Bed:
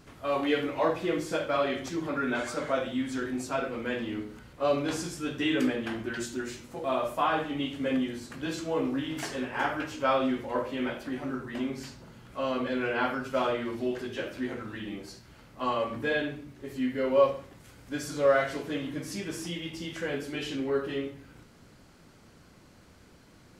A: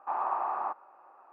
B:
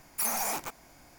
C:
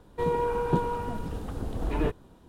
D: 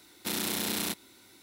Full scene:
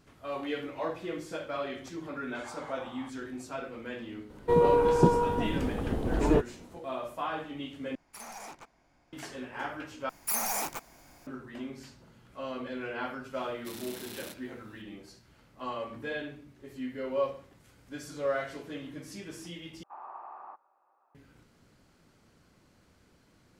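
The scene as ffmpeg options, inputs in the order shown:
-filter_complex "[1:a]asplit=2[s0][s1];[2:a]asplit=2[s2][s3];[0:a]volume=0.422[s4];[3:a]equalizer=f=380:t=o:w=3:g=7[s5];[s2]adynamicsmooth=sensitivity=6:basefreq=4700[s6];[s4]asplit=4[s7][s8][s9][s10];[s7]atrim=end=7.954[s11];[s6]atrim=end=1.18,asetpts=PTS-STARTPTS,volume=0.299[s12];[s8]atrim=start=9.126:end=10.094[s13];[s3]atrim=end=1.18,asetpts=PTS-STARTPTS,volume=0.944[s14];[s9]atrim=start=11.266:end=19.834[s15];[s1]atrim=end=1.32,asetpts=PTS-STARTPTS,volume=0.2[s16];[s10]atrim=start=21.146[s17];[s0]atrim=end=1.32,asetpts=PTS-STARTPTS,volume=0.158,afade=t=in:d=0.004:c=hsin,afade=t=out:st=1.316:d=0.004:c=hsin,adelay=2370[s18];[s5]atrim=end=2.48,asetpts=PTS-STARTPTS,volume=0.841,afade=t=in:d=0.004:c=hsin,afade=t=out:st=2.476:d=0.004:c=hsin,adelay=4300[s19];[4:a]atrim=end=1.42,asetpts=PTS-STARTPTS,volume=0.224,afade=t=in:d=0.004:c=hsin,afade=t=out:st=1.416:d=0.004:c=hsin,adelay=13400[s20];[s11][s12]acrossfade=d=0.004:c1=hsin:c2=hsin[s21];[s21][s13]acrossfade=d=0.004:c1=hsin:c2=hsin[s22];[s22][s14]acrossfade=d=0.004:c1=hsin:c2=hsin[s23];[s23][s15]acrossfade=d=0.004:c1=hsin:c2=hsin[s24];[s24][s16]acrossfade=d=0.004:c1=hsin:c2=hsin[s25];[s25][s17]acrossfade=d=0.004:c1=hsin:c2=hsin[s26];[s26][s18][s19][s20]amix=inputs=4:normalize=0"

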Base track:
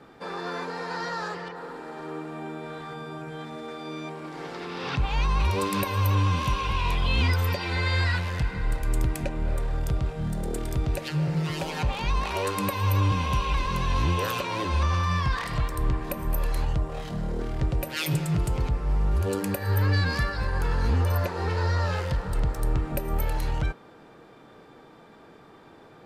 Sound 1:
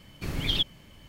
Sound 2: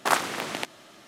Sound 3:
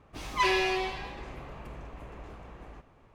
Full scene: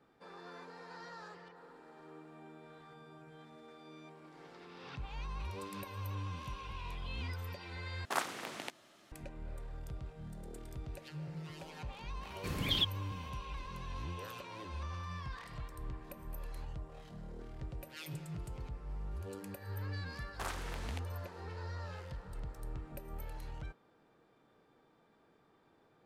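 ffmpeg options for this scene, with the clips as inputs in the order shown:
-filter_complex "[2:a]asplit=2[s0][s1];[0:a]volume=0.126[s2];[1:a]highpass=45[s3];[s1]alimiter=limit=0.266:level=0:latency=1:release=14[s4];[s2]asplit=2[s5][s6];[s5]atrim=end=8.054[s7];[s0]atrim=end=1.07,asetpts=PTS-STARTPTS,volume=0.251[s8];[s6]atrim=start=9.116[s9];[s3]atrim=end=1.08,asetpts=PTS-STARTPTS,volume=0.562,afade=t=in:d=0.004:c=hsin,afade=t=out:st=1.076:d=0.004:c=hsin,adelay=12220[s10];[s4]atrim=end=1.07,asetpts=PTS-STARTPTS,volume=0.168,afade=t=in:d=0.004:c=hsin,afade=t=out:st=1.066:d=0.004:c=hsin,adelay=20340[s11];[s7][s8]acrossfade=d=0.004:c1=hsin:c2=hsin[s12];[s12][s9]acrossfade=d=0.004:c1=hsin:c2=hsin[s13];[s13][s10][s11]amix=inputs=3:normalize=0"

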